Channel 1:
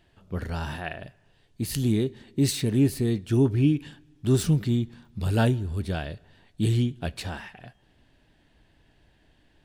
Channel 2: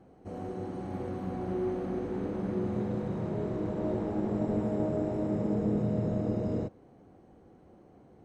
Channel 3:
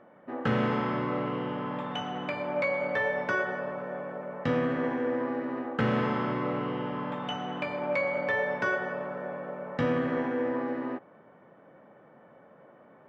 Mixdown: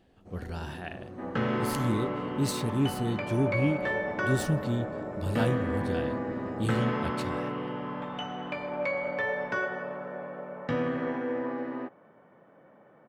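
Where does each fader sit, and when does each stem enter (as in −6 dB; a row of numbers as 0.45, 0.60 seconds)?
−6.0, −8.5, −2.0 decibels; 0.00, 0.00, 0.90 seconds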